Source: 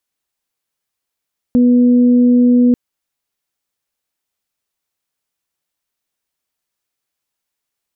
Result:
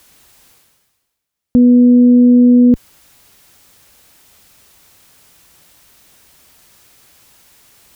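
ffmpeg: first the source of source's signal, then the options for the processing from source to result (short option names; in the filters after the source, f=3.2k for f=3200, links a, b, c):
-f lavfi -i "aevalsrc='0.447*sin(2*PI*245*t)+0.0944*sin(2*PI*490*t)':d=1.19:s=44100"
-af "highpass=f=43:p=1,lowshelf=f=150:g=10,areverse,acompressor=mode=upward:threshold=-24dB:ratio=2.5,areverse"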